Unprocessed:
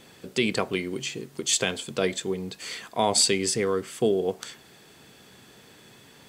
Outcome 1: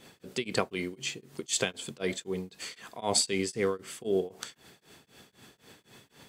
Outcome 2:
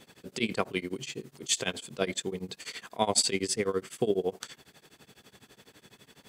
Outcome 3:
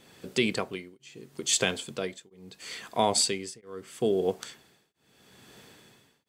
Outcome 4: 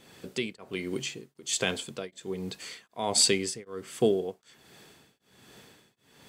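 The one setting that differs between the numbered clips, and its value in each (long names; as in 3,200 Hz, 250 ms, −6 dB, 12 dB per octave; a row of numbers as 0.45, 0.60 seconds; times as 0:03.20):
shaped tremolo, speed: 3.9, 12, 0.76, 1.3 Hertz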